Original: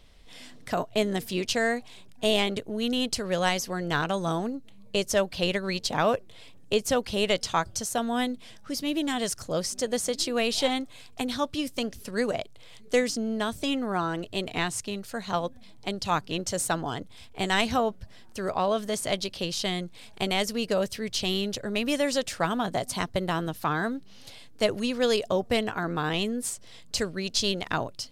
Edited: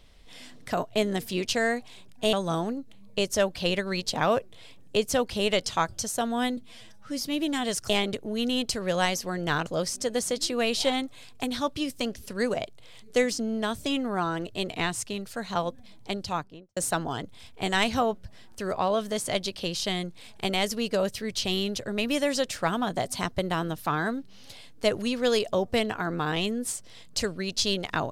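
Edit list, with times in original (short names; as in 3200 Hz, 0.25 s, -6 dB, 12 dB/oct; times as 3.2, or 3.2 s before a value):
2.33–4.1 move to 9.44
8.34–8.79 stretch 1.5×
15.88–16.54 studio fade out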